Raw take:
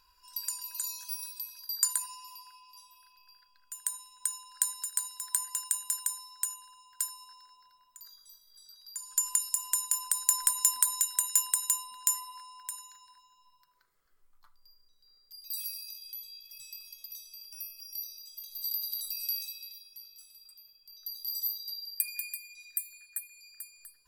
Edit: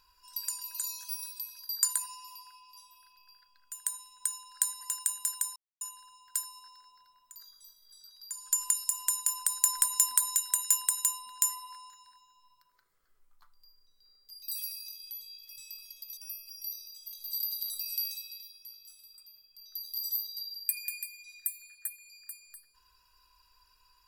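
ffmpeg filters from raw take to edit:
-filter_complex "[0:a]asplit=6[s0][s1][s2][s3][s4][s5];[s0]atrim=end=4.812[s6];[s1]atrim=start=5.458:end=6.21,asetpts=PTS-STARTPTS,afade=t=out:st=0.748:d=0.004:c=hsin[s7];[s2]atrim=start=6.21:end=6.46,asetpts=PTS-STARTPTS,volume=0[s8];[s3]atrim=start=6.46:end=12.552,asetpts=PTS-STARTPTS,afade=t=in:d=0.004:c=hsin[s9];[s4]atrim=start=12.918:end=17.192[s10];[s5]atrim=start=17.478[s11];[s7][s8][s9]concat=n=3:v=0:a=1[s12];[s6][s12]acrossfade=d=0.004:c1=hsin:c2=hsin[s13];[s13][s10]acrossfade=d=0.004:c1=hsin:c2=hsin[s14];[s14][s11]acrossfade=d=0.004:c1=hsin:c2=hsin"

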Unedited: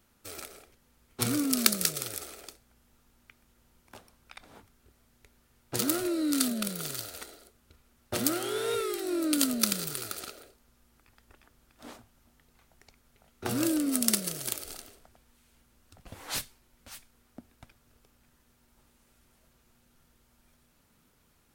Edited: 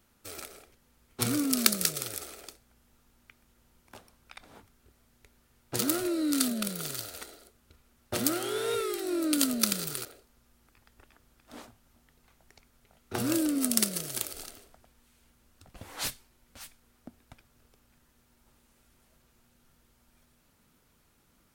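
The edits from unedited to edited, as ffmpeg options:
-filter_complex "[0:a]asplit=2[s0][s1];[s0]atrim=end=10.052[s2];[s1]atrim=start=10.358[s3];[s2][s3]acrossfade=d=0.004:c1=hsin:c2=hsin"

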